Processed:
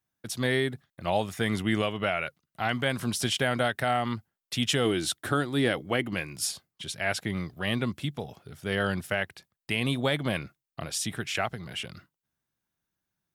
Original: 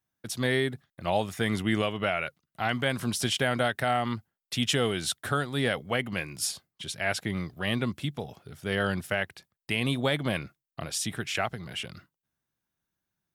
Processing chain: 4.85–6.15 s: peaking EQ 320 Hz +11.5 dB 0.37 oct

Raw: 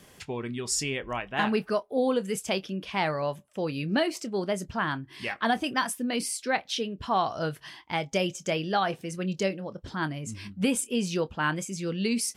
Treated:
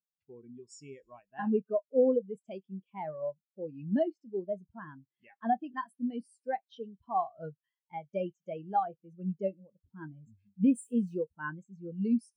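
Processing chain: 10.46–11.22 s: zero-crossing glitches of -25.5 dBFS; on a send: feedback echo behind a high-pass 104 ms, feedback 71%, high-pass 4 kHz, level -13 dB; on the sum: spectral contrast expander 2.5:1; trim -4 dB

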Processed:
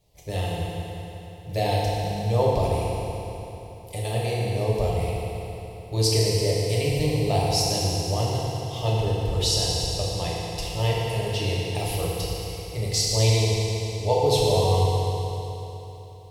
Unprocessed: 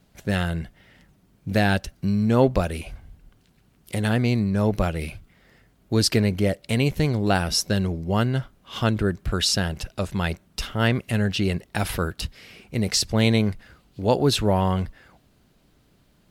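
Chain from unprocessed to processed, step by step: static phaser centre 610 Hz, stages 4; FDN reverb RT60 3.5 s, high-frequency decay 0.9×, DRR -6 dB; trim -4.5 dB

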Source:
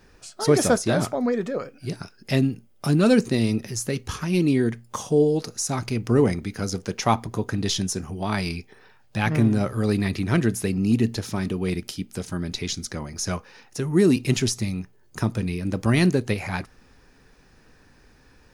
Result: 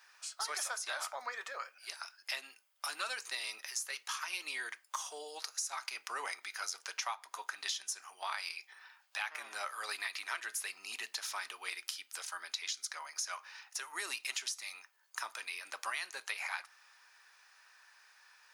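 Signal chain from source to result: high-pass 960 Hz 24 dB/octave; compression 12:1, threshold -33 dBFS, peak gain reduction 13.5 dB; on a send: reverberation RT60 0.35 s, pre-delay 3 ms, DRR 14 dB; on the sum: trim -1.5 dB

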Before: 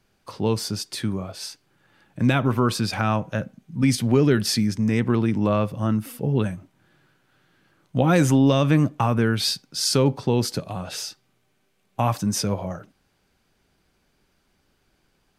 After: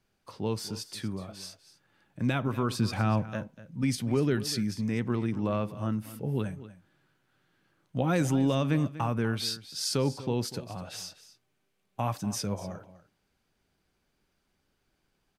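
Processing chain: 2.78–3.27 s: bass shelf 410 Hz +7.5 dB; delay 244 ms -15.5 dB; trim -8.5 dB

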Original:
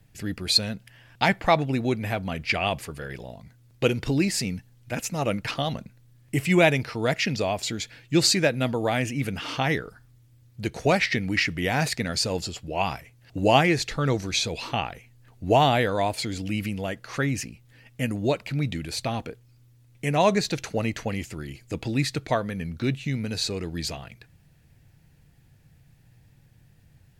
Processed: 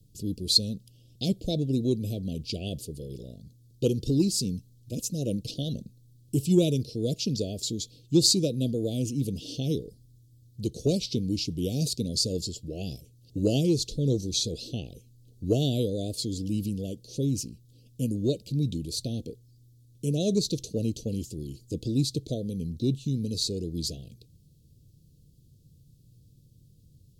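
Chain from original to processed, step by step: inverse Chebyshev band-stop 950–1900 Hz, stop band 60 dB; Chebyshev shaper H 7 -42 dB, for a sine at -6.5 dBFS

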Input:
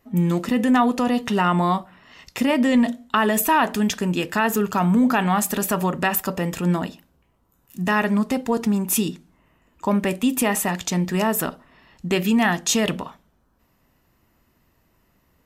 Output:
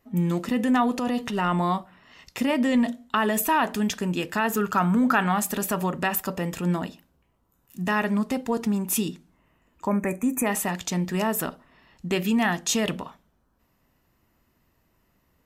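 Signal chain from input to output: 0.86–1.60 s: transient shaper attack -8 dB, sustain +2 dB; 4.57–5.32 s: peaking EQ 1.4 kHz +8.5 dB 0.59 oct; 9.88–10.47 s: time-frequency box 2.6–5.9 kHz -22 dB; trim -4 dB

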